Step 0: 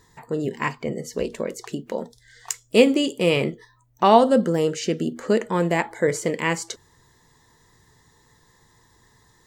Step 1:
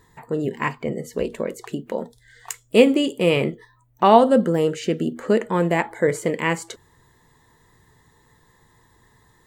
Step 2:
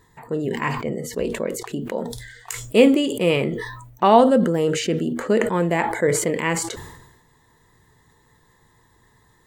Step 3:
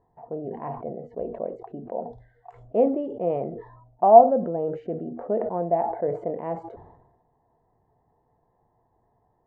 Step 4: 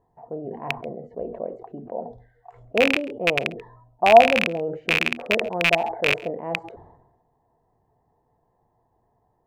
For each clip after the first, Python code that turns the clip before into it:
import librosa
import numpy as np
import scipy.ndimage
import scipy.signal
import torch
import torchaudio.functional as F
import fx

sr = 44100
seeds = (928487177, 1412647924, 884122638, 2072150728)

y1 = fx.peak_eq(x, sr, hz=5500.0, db=-9.5, octaves=0.85)
y1 = y1 * librosa.db_to_amplitude(1.5)
y2 = fx.sustainer(y1, sr, db_per_s=53.0)
y2 = y2 * librosa.db_to_amplitude(-1.0)
y3 = fx.lowpass_res(y2, sr, hz=710.0, q=8.0)
y3 = y3 * librosa.db_to_amplitude(-11.5)
y4 = fx.rattle_buzz(y3, sr, strikes_db=-33.0, level_db=-5.0)
y4 = y4 + 10.0 ** (-23.0 / 20.0) * np.pad(y4, (int(136 * sr / 1000.0), 0))[:len(y4)]